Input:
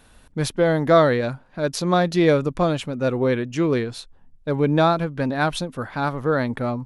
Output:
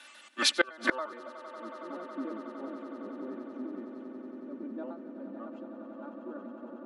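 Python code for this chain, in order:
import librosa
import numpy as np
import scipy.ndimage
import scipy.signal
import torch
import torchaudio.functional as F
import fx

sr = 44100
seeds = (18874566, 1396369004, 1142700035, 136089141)

p1 = fx.pitch_trill(x, sr, semitones=-4.5, every_ms=70)
p2 = scipy.signal.sosfilt(scipy.signal.butter(12, 200.0, 'highpass', fs=sr, output='sos'), p1)
p3 = fx.notch(p2, sr, hz=910.0, q=29.0)
p4 = p3 + 0.88 * np.pad(p3, (int(3.4 * sr / 1000.0), 0))[:len(p3)]
p5 = fx.dynamic_eq(p4, sr, hz=1300.0, q=1.8, threshold_db=-36.0, ratio=4.0, max_db=7)
p6 = fx.filter_sweep_bandpass(p5, sr, from_hz=2900.0, to_hz=270.0, start_s=0.68, end_s=1.55, q=0.86)
p7 = p6 + fx.echo_swell(p6, sr, ms=92, loudest=8, wet_db=-11.5, dry=0)
p8 = fx.gate_flip(p7, sr, shuts_db=-16.0, range_db=-29)
y = F.gain(torch.from_numpy(p8), 6.5).numpy()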